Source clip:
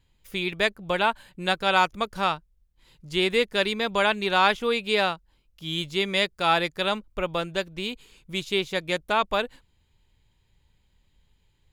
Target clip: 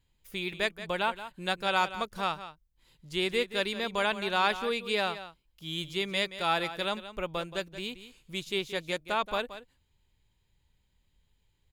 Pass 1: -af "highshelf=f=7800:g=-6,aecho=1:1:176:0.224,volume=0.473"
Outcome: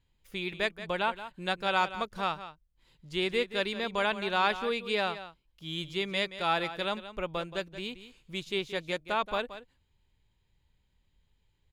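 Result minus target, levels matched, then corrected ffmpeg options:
8 kHz band -4.5 dB
-af "highshelf=f=7800:g=5,aecho=1:1:176:0.224,volume=0.473"

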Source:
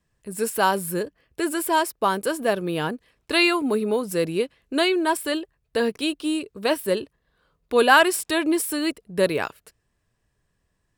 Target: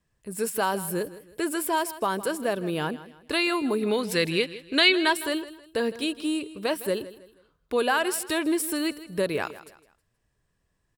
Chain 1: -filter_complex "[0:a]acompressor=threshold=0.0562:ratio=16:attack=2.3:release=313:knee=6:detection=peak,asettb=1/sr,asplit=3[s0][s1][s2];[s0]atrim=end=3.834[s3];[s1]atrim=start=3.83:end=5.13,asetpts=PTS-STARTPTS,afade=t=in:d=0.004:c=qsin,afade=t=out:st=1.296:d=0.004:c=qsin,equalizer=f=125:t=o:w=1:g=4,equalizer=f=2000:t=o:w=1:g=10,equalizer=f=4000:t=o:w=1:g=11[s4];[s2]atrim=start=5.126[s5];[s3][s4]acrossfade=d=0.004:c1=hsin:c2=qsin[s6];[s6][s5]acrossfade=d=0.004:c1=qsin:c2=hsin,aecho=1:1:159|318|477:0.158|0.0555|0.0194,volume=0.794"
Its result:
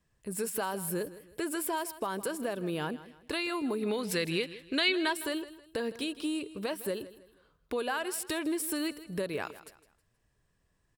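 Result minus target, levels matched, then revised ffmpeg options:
compression: peak gain reduction +9.5 dB
-filter_complex "[0:a]acompressor=threshold=0.178:ratio=16:attack=2.3:release=313:knee=6:detection=peak,asettb=1/sr,asplit=3[s0][s1][s2];[s0]atrim=end=3.834[s3];[s1]atrim=start=3.83:end=5.13,asetpts=PTS-STARTPTS,afade=t=in:d=0.004:c=qsin,afade=t=out:st=1.296:d=0.004:c=qsin,equalizer=f=125:t=o:w=1:g=4,equalizer=f=2000:t=o:w=1:g=10,equalizer=f=4000:t=o:w=1:g=11[s4];[s2]atrim=start=5.126[s5];[s3][s4]acrossfade=d=0.004:c1=hsin:c2=qsin[s6];[s6][s5]acrossfade=d=0.004:c1=qsin:c2=hsin,aecho=1:1:159|318|477:0.158|0.0555|0.0194,volume=0.794"

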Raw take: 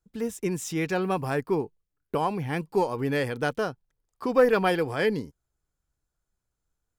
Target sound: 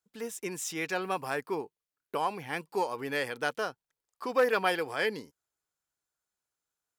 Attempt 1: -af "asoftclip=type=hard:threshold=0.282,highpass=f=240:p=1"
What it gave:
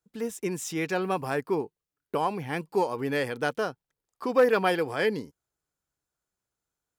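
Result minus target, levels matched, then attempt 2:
250 Hz band +4.0 dB
-af "asoftclip=type=hard:threshold=0.282,highpass=f=860:p=1"

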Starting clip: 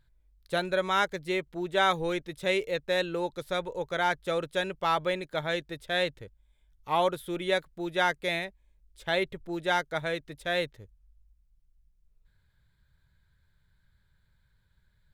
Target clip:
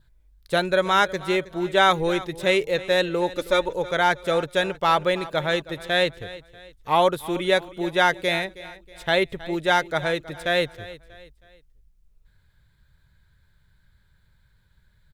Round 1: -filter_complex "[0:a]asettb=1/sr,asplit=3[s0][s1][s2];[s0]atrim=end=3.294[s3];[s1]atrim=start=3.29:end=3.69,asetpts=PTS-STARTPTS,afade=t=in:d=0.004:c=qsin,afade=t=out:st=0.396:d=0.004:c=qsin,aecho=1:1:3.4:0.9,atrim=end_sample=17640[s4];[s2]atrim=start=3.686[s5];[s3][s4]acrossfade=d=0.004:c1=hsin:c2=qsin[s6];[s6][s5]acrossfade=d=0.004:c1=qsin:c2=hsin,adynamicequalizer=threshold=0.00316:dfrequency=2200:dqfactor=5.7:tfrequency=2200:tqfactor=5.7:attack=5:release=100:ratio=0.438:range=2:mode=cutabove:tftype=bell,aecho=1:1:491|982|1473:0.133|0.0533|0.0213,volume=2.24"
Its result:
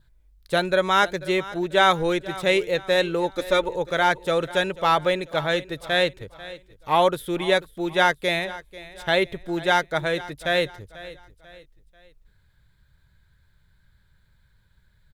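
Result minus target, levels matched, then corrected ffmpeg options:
echo 172 ms late
-filter_complex "[0:a]asettb=1/sr,asplit=3[s0][s1][s2];[s0]atrim=end=3.294[s3];[s1]atrim=start=3.29:end=3.69,asetpts=PTS-STARTPTS,afade=t=in:d=0.004:c=qsin,afade=t=out:st=0.396:d=0.004:c=qsin,aecho=1:1:3.4:0.9,atrim=end_sample=17640[s4];[s2]atrim=start=3.686[s5];[s3][s4]acrossfade=d=0.004:c1=hsin:c2=qsin[s6];[s6][s5]acrossfade=d=0.004:c1=qsin:c2=hsin,adynamicequalizer=threshold=0.00316:dfrequency=2200:dqfactor=5.7:tfrequency=2200:tqfactor=5.7:attack=5:release=100:ratio=0.438:range=2:mode=cutabove:tftype=bell,aecho=1:1:319|638|957:0.133|0.0533|0.0213,volume=2.24"

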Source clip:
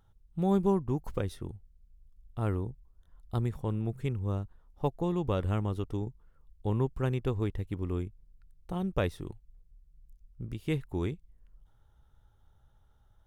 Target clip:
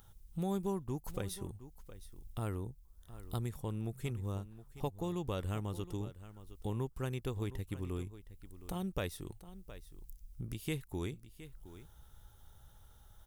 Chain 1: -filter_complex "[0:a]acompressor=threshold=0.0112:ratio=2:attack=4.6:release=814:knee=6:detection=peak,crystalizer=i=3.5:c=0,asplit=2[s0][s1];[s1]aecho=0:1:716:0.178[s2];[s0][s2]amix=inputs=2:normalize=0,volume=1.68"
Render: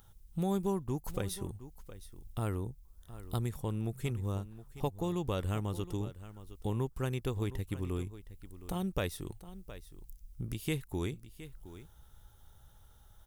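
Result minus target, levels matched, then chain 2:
compression: peak gain reduction -3.5 dB
-filter_complex "[0:a]acompressor=threshold=0.00501:ratio=2:attack=4.6:release=814:knee=6:detection=peak,crystalizer=i=3.5:c=0,asplit=2[s0][s1];[s1]aecho=0:1:716:0.178[s2];[s0][s2]amix=inputs=2:normalize=0,volume=1.68"

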